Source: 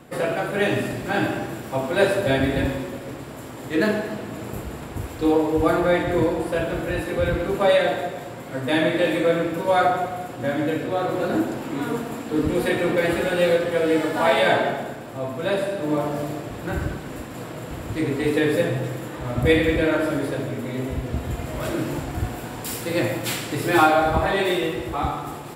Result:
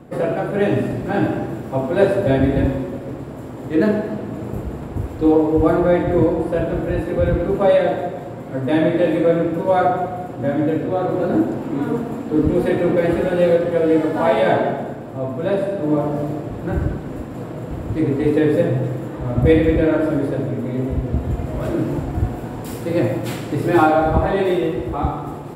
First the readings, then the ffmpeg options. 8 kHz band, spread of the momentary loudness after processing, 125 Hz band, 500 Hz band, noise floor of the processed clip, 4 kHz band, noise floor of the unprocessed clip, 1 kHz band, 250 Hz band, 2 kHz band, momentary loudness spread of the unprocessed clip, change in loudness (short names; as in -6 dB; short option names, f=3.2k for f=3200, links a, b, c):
n/a, 12 LU, +6.5 dB, +4.0 dB, -31 dBFS, -7.0 dB, -36 dBFS, +1.5 dB, +5.5 dB, -3.5 dB, 12 LU, +3.5 dB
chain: -af "tiltshelf=f=1.2k:g=7.5,volume=-1dB"